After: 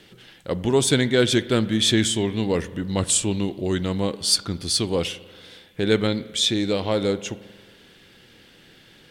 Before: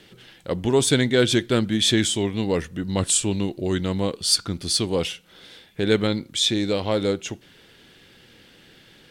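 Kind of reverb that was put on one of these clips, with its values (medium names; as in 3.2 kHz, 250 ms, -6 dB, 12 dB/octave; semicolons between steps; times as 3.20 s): spring tank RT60 1.6 s, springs 45 ms, chirp 50 ms, DRR 16 dB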